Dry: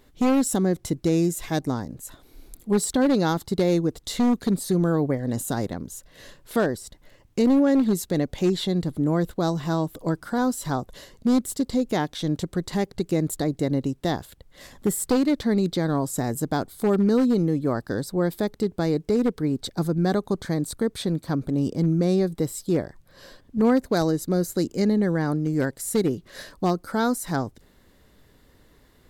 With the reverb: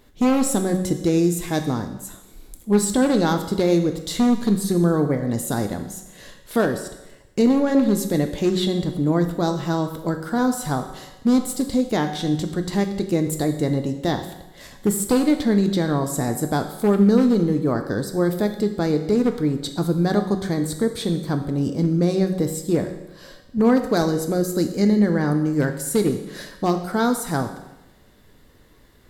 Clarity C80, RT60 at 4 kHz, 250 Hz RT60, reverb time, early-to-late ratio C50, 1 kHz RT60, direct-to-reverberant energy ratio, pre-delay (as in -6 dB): 11.5 dB, 0.95 s, 0.95 s, 1.0 s, 9.0 dB, 1.0 s, 5.5 dB, 5 ms